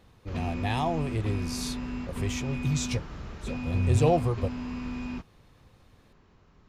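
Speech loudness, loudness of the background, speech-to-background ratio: -29.5 LUFS, -36.0 LUFS, 6.5 dB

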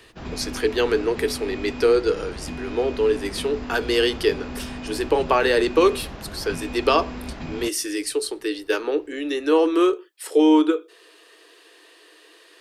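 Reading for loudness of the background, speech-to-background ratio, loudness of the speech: -34.5 LUFS, 12.5 dB, -22.0 LUFS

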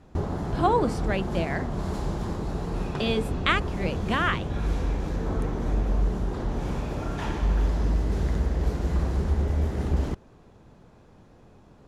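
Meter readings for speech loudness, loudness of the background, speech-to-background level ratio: -27.5 LUFS, -29.0 LUFS, 1.5 dB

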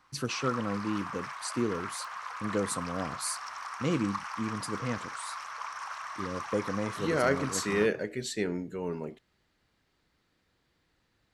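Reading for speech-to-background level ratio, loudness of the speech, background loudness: 6.5 dB, -33.0 LUFS, -39.5 LUFS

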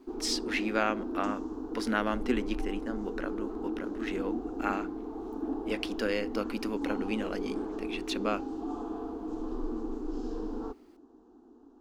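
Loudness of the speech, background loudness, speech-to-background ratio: -34.5 LUFS, -37.0 LUFS, 2.5 dB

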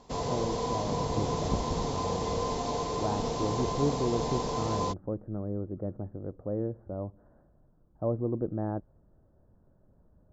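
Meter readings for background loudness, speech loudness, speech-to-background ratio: -32.0 LUFS, -35.0 LUFS, -3.0 dB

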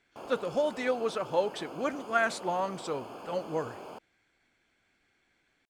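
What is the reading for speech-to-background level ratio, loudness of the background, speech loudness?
13.0 dB, -45.0 LUFS, -32.0 LUFS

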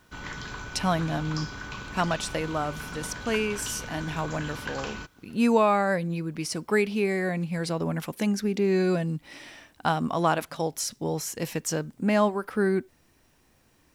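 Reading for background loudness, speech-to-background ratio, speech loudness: -37.5 LUFS, 10.0 dB, -27.5 LUFS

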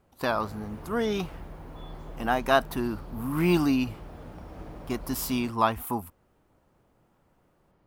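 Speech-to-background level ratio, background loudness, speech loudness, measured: 16.5 dB, -44.5 LUFS, -28.0 LUFS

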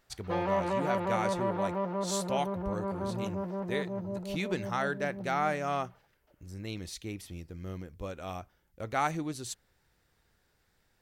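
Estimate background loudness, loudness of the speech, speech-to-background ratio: -34.5 LUFS, -36.0 LUFS, -1.5 dB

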